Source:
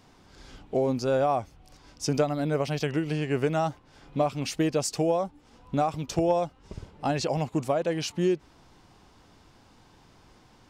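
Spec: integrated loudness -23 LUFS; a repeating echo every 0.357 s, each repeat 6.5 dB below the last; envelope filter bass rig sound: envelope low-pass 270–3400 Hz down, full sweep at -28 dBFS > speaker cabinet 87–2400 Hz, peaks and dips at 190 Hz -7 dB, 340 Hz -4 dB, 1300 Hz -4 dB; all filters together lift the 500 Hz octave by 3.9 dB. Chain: bell 500 Hz +5.5 dB; feedback echo 0.357 s, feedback 47%, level -6.5 dB; envelope low-pass 270–3400 Hz down, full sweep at -28 dBFS; speaker cabinet 87–2400 Hz, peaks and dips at 190 Hz -7 dB, 340 Hz -4 dB, 1300 Hz -4 dB; gain +2.5 dB

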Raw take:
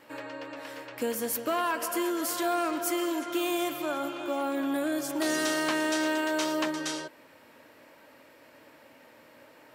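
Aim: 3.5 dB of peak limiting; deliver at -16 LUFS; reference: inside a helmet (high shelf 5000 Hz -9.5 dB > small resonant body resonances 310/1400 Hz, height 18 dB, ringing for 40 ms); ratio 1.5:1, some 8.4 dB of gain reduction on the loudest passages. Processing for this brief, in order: compressor 1.5:1, threshold -49 dBFS; limiter -30.5 dBFS; high shelf 5000 Hz -9.5 dB; small resonant body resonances 310/1400 Hz, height 18 dB, ringing for 40 ms; gain +11 dB

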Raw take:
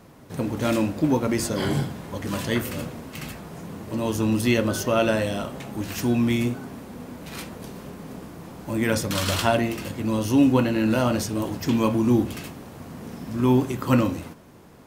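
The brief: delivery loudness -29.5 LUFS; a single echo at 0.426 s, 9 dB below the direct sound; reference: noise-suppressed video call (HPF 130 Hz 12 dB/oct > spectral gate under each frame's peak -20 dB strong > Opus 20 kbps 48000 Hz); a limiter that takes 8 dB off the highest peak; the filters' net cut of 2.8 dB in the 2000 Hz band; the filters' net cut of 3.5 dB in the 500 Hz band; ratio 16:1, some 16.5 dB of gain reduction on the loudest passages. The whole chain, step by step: bell 500 Hz -4.5 dB; bell 2000 Hz -3.5 dB; compressor 16:1, threshold -32 dBFS; limiter -28.5 dBFS; HPF 130 Hz 12 dB/oct; echo 0.426 s -9 dB; spectral gate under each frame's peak -20 dB strong; gain +10 dB; Opus 20 kbps 48000 Hz

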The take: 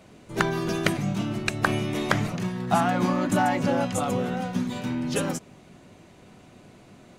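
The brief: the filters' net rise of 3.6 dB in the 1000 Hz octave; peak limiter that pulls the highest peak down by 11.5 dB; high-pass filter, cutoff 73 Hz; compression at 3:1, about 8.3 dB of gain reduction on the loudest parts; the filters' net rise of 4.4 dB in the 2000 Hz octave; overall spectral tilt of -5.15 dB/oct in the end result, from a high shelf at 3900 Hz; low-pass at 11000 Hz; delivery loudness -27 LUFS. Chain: HPF 73 Hz; LPF 11000 Hz; bell 1000 Hz +4 dB; bell 2000 Hz +3.5 dB; high shelf 3900 Hz +3.5 dB; compressor 3:1, threshold -25 dBFS; gain +3.5 dB; limiter -16 dBFS

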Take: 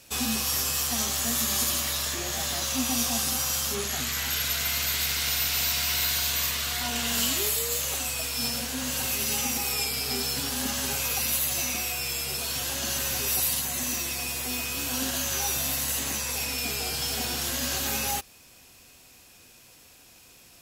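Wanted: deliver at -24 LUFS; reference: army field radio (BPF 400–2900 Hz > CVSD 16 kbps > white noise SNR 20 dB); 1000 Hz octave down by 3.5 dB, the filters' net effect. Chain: BPF 400–2900 Hz; bell 1000 Hz -4.5 dB; CVSD 16 kbps; white noise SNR 20 dB; gain +14 dB

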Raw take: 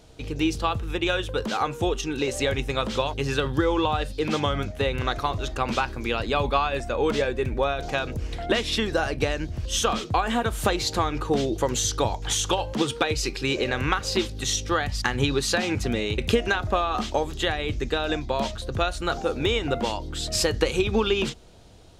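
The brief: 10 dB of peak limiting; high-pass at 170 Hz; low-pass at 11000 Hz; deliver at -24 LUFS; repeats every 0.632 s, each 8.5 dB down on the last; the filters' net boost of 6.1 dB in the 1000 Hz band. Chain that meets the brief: HPF 170 Hz; LPF 11000 Hz; bell 1000 Hz +8 dB; limiter -12 dBFS; feedback echo 0.632 s, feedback 38%, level -8.5 dB; gain +0.5 dB

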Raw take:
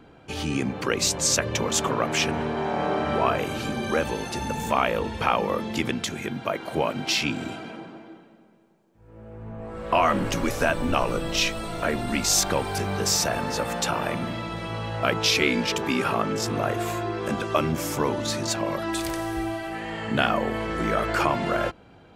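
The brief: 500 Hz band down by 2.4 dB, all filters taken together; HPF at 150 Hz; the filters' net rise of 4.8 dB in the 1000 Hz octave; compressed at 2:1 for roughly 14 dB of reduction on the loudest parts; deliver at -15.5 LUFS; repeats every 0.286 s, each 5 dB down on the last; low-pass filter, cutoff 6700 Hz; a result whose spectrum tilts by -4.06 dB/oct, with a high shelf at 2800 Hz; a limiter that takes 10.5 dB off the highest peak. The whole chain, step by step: HPF 150 Hz; LPF 6700 Hz; bell 500 Hz -6 dB; bell 1000 Hz +9 dB; high shelf 2800 Hz -8 dB; compressor 2:1, threshold -40 dBFS; limiter -25.5 dBFS; feedback echo 0.286 s, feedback 56%, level -5 dB; gain +20 dB

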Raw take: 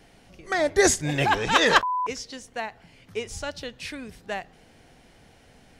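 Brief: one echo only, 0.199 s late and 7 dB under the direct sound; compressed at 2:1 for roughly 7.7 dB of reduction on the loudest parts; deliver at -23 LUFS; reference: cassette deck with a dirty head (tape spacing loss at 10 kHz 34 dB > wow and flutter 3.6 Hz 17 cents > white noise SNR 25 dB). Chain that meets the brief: compressor 2:1, threshold -28 dBFS; tape spacing loss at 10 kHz 34 dB; echo 0.199 s -7 dB; wow and flutter 3.6 Hz 17 cents; white noise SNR 25 dB; gain +10.5 dB

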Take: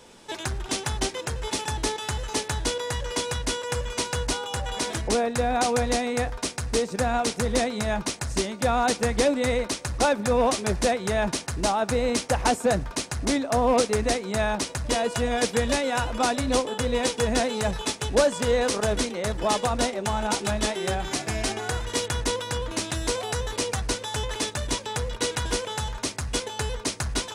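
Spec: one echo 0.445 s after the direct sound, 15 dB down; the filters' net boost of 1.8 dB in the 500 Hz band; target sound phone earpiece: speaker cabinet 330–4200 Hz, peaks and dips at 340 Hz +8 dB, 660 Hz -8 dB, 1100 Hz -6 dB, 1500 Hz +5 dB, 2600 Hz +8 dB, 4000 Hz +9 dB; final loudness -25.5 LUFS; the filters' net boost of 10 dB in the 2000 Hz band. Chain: speaker cabinet 330–4200 Hz, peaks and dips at 340 Hz +8 dB, 660 Hz -8 dB, 1100 Hz -6 dB, 1500 Hz +5 dB, 2600 Hz +8 dB, 4000 Hz +9 dB; bell 500 Hz +3.5 dB; bell 2000 Hz +7.5 dB; echo 0.445 s -15 dB; gain -2.5 dB

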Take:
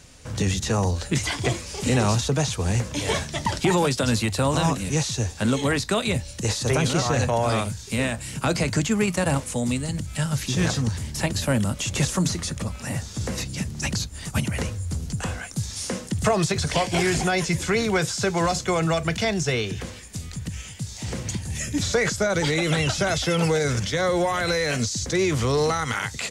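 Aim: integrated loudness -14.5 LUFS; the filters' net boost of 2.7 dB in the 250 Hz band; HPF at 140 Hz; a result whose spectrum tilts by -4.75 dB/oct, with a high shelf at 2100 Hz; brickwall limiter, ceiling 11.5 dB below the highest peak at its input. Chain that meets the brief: HPF 140 Hz; bell 250 Hz +5 dB; high shelf 2100 Hz -4.5 dB; gain +15 dB; limiter -5 dBFS

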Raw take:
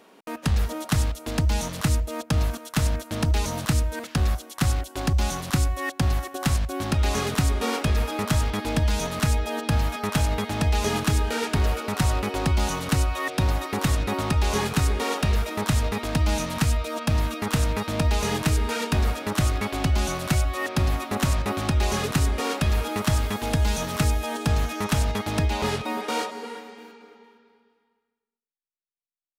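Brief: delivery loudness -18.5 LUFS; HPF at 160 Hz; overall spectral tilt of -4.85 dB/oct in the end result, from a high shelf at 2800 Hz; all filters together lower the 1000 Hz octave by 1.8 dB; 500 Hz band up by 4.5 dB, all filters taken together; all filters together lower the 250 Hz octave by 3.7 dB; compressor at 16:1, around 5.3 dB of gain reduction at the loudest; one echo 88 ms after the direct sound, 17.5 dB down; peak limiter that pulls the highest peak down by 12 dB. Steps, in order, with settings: HPF 160 Hz; bell 250 Hz -5.5 dB; bell 500 Hz +8.5 dB; bell 1000 Hz -4 dB; high shelf 2800 Hz -7.5 dB; compressor 16:1, threshold -26 dBFS; limiter -27 dBFS; echo 88 ms -17.5 dB; gain +17.5 dB

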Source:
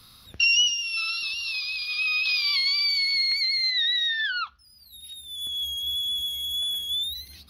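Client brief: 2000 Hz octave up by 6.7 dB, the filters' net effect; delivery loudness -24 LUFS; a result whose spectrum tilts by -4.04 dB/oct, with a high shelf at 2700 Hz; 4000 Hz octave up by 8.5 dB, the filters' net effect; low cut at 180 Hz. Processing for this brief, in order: HPF 180 Hz; bell 2000 Hz +3.5 dB; high shelf 2700 Hz +6 dB; bell 4000 Hz +4.5 dB; gain -9 dB

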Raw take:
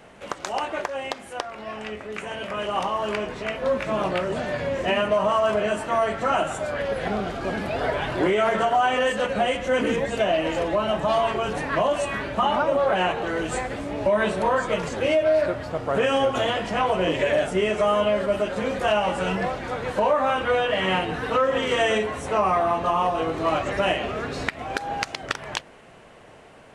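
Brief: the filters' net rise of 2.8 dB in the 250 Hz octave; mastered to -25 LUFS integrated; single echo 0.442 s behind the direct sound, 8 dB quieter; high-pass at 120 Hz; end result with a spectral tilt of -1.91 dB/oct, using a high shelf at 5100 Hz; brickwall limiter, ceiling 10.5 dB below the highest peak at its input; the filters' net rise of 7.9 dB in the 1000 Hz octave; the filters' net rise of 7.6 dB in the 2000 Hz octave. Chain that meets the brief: HPF 120 Hz; bell 250 Hz +3.5 dB; bell 1000 Hz +8.5 dB; bell 2000 Hz +5.5 dB; high shelf 5100 Hz +8 dB; limiter -11.5 dBFS; echo 0.442 s -8 dB; gain -4.5 dB

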